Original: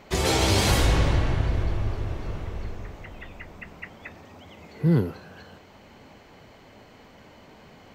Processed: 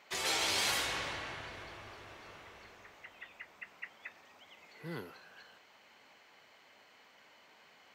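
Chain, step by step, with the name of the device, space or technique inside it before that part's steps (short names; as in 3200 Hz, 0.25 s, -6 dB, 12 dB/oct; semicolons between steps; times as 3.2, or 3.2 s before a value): filter by subtraction (in parallel: LPF 1900 Hz 12 dB/oct + phase invert); on the sum: gain -7.5 dB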